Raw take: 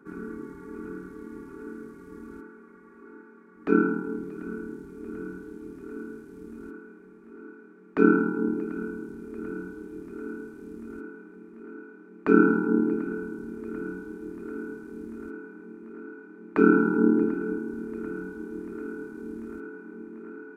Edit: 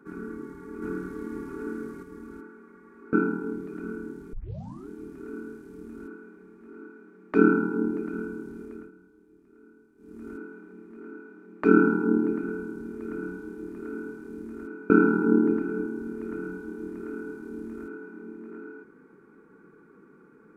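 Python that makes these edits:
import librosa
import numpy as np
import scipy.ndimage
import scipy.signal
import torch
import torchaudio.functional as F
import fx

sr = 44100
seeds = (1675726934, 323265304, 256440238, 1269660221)

y = fx.edit(x, sr, fx.clip_gain(start_s=0.82, length_s=1.21, db=5.5),
    fx.cut(start_s=3.13, length_s=0.63),
    fx.tape_start(start_s=4.96, length_s=0.56),
    fx.fade_down_up(start_s=9.25, length_s=1.64, db=-18.0, fade_s=0.29),
    fx.cut(start_s=15.53, length_s=1.09), tone=tone)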